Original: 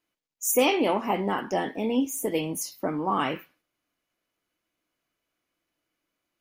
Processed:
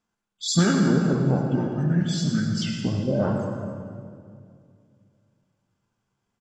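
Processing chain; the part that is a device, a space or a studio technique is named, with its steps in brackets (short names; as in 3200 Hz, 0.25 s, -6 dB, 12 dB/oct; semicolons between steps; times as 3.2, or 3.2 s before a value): monster voice (pitch shift -6.5 st; formant shift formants -5.5 st; low shelf 160 Hz +6.5 dB; reverb RT60 2.3 s, pre-delay 66 ms, DRR 2.5 dB); 1.92–3.04 bell 1900 Hz +5.5 dB 0.59 oct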